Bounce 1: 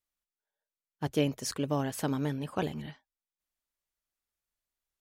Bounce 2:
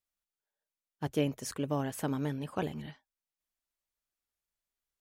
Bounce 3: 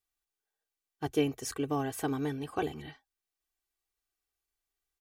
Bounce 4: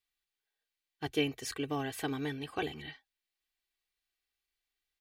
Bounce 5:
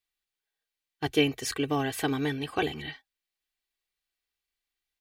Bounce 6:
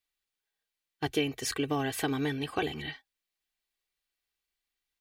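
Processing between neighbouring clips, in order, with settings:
dynamic equaliser 4,600 Hz, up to −6 dB, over −52 dBFS, Q 1.5; level −2 dB
comb filter 2.6 ms, depth 73%
flat-topped bell 2,800 Hz +8.5 dB; level −3.5 dB
noise gate −55 dBFS, range −7 dB; level +7 dB
downward compressor 2.5 to 1, threshold −27 dBFS, peak gain reduction 6.5 dB

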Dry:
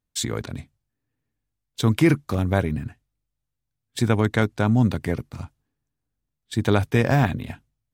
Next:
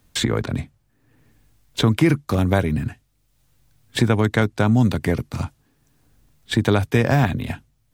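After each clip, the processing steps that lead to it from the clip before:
multiband upward and downward compressor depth 70%
level +2.5 dB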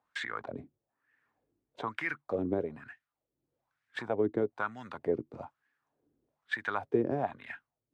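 LFO wah 1.1 Hz 330–1,800 Hz, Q 3.6
level −2.5 dB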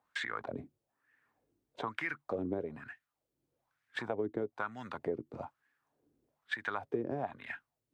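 downward compressor 3 to 1, threshold −34 dBFS, peak gain reduction 9.5 dB
level +1 dB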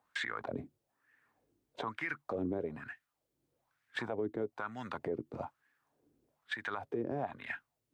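brickwall limiter −28 dBFS, peak gain reduction 8.5 dB
level +2 dB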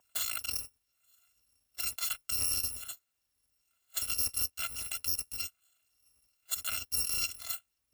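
samples in bit-reversed order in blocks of 256 samples
level +4 dB

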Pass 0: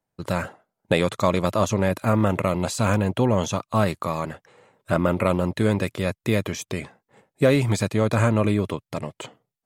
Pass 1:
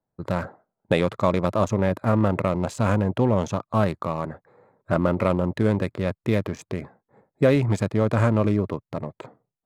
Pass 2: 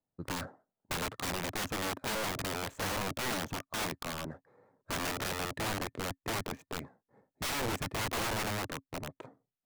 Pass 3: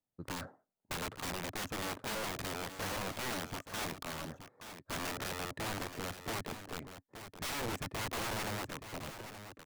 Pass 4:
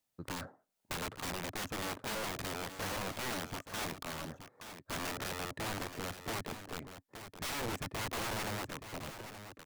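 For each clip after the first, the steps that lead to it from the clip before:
adaptive Wiener filter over 15 samples; high-shelf EQ 3,700 Hz −6.5 dB
running median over 9 samples; hollow resonant body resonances 270/1,800 Hz, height 7 dB, ringing for 85 ms; wrap-around overflow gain 20.5 dB; level −8.5 dB
single-tap delay 874 ms −10.5 dB; level −4 dB
one half of a high-frequency compander encoder only

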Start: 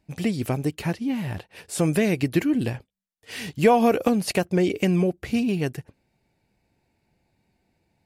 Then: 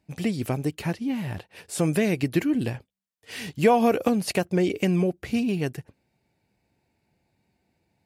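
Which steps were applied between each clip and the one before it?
high-pass filter 56 Hz
level −1.5 dB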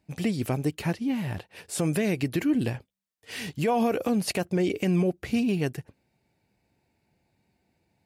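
brickwall limiter −16.5 dBFS, peak gain reduction 9.5 dB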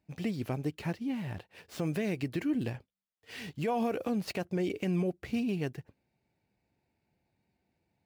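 running median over 5 samples
level −6.5 dB

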